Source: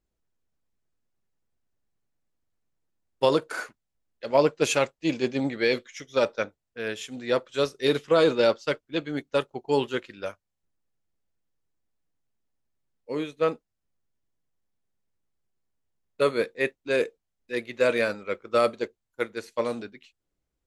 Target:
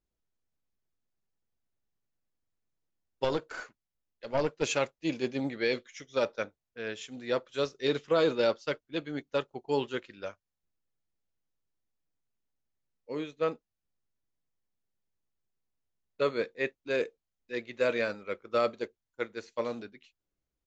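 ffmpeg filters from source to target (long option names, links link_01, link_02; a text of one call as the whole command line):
ffmpeg -i in.wav -filter_complex "[0:a]asettb=1/sr,asplit=3[link_01][link_02][link_03];[link_01]atrim=end=3.244[link_04];[link_02]atrim=start=3.24:end=4.63,asetpts=PTS-STARTPTS,afade=type=in:duration=0.004:curve=qsin,afade=type=out:start_time=1.386:duration=0.004:curve=qsin,aeval=exprs='(tanh(5.62*val(0)+0.5)-tanh(0.5))/5.62':channel_layout=same[link_05];[link_03]atrim=start=4.626[link_06];[link_04][link_05]acrossfade=duration=0.004:curve1=hsin:curve2=qsin[link_07];[link_07][link_06]acrossfade=duration=0.004:curve1=qsin:curve2=hsin,aresample=16000,aresample=44100,volume=-5.5dB" out.wav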